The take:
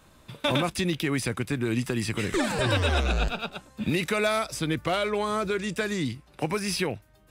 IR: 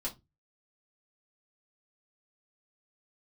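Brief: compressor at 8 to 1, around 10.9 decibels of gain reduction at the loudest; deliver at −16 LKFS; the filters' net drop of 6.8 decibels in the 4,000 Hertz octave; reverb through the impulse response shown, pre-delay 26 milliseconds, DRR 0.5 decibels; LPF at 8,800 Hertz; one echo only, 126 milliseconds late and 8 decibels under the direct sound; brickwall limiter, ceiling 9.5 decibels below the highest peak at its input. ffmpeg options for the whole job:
-filter_complex "[0:a]lowpass=8800,equalizer=frequency=4000:width_type=o:gain=-8.5,acompressor=threshold=-33dB:ratio=8,alimiter=level_in=5dB:limit=-24dB:level=0:latency=1,volume=-5dB,aecho=1:1:126:0.398,asplit=2[link_01][link_02];[1:a]atrim=start_sample=2205,adelay=26[link_03];[link_02][link_03]afir=irnorm=-1:irlink=0,volume=-2dB[link_04];[link_01][link_04]amix=inputs=2:normalize=0,volume=19.5dB"

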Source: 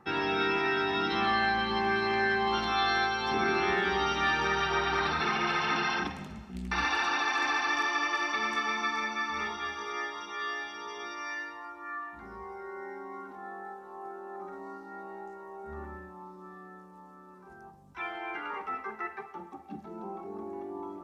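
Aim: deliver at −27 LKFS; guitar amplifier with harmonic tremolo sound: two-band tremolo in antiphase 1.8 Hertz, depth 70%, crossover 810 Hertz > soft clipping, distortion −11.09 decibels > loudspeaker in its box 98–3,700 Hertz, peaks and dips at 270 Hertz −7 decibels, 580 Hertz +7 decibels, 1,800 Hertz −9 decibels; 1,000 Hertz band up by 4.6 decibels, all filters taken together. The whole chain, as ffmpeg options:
ffmpeg -i in.wav -filter_complex "[0:a]equalizer=frequency=1000:width_type=o:gain=6,acrossover=split=810[link_01][link_02];[link_01]aeval=exprs='val(0)*(1-0.7/2+0.7/2*cos(2*PI*1.8*n/s))':channel_layout=same[link_03];[link_02]aeval=exprs='val(0)*(1-0.7/2-0.7/2*cos(2*PI*1.8*n/s))':channel_layout=same[link_04];[link_03][link_04]amix=inputs=2:normalize=0,asoftclip=threshold=-28.5dB,highpass=98,equalizer=frequency=270:width_type=q:width=4:gain=-7,equalizer=frequency=580:width_type=q:width=4:gain=7,equalizer=frequency=1800:width_type=q:width=4:gain=-9,lowpass=frequency=3700:width=0.5412,lowpass=frequency=3700:width=1.3066,volume=9.5dB" out.wav

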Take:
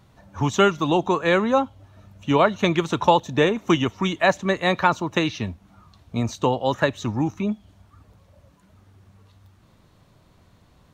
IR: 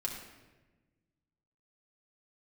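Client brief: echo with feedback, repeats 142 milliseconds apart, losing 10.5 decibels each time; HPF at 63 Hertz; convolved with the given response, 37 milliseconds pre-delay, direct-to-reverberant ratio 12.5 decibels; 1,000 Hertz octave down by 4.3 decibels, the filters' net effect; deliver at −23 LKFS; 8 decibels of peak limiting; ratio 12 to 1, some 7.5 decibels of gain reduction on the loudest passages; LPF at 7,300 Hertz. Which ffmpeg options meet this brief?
-filter_complex "[0:a]highpass=63,lowpass=7300,equalizer=frequency=1000:width_type=o:gain=-5.5,acompressor=threshold=-21dB:ratio=12,alimiter=limit=-18.5dB:level=0:latency=1,aecho=1:1:142|284|426:0.299|0.0896|0.0269,asplit=2[link_01][link_02];[1:a]atrim=start_sample=2205,adelay=37[link_03];[link_02][link_03]afir=irnorm=-1:irlink=0,volume=-14.5dB[link_04];[link_01][link_04]amix=inputs=2:normalize=0,volume=6.5dB"

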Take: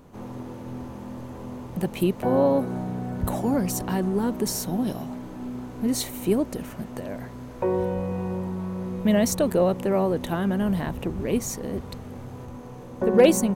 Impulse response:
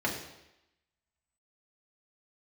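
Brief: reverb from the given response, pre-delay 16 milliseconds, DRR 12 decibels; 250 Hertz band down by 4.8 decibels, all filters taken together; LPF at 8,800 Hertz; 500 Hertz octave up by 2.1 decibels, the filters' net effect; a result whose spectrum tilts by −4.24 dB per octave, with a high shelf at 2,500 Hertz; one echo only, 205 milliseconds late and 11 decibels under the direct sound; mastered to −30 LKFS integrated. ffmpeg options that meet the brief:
-filter_complex "[0:a]lowpass=8800,equalizer=frequency=250:width_type=o:gain=-8,equalizer=frequency=500:width_type=o:gain=4,highshelf=frequency=2500:gain=8,aecho=1:1:205:0.282,asplit=2[link_01][link_02];[1:a]atrim=start_sample=2205,adelay=16[link_03];[link_02][link_03]afir=irnorm=-1:irlink=0,volume=-21dB[link_04];[link_01][link_04]amix=inputs=2:normalize=0,volume=-6dB"

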